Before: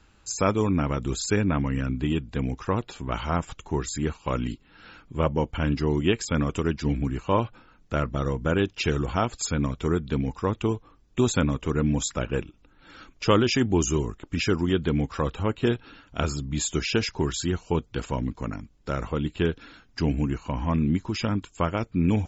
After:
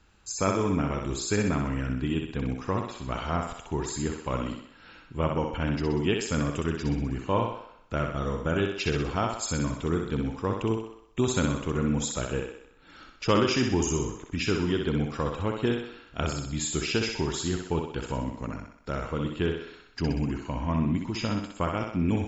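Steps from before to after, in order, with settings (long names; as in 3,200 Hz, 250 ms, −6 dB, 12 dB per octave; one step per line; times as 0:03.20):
feedback echo with a high-pass in the loop 63 ms, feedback 56%, high-pass 220 Hz, level −4 dB
level −3.5 dB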